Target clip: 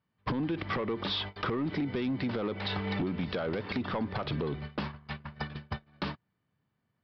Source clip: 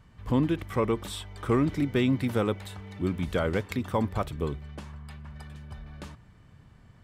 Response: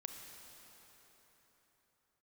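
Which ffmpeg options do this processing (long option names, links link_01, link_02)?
-af "highpass=150,agate=range=-40dB:threshold=-45dB:ratio=16:detection=peak,alimiter=level_in=0.5dB:limit=-24dB:level=0:latency=1:release=70,volume=-0.5dB,acompressor=threshold=-46dB:ratio=20,aresample=11025,aeval=exprs='0.0211*sin(PI/2*2.51*val(0)/0.0211)':channel_layout=same,aresample=44100,volume=8dB"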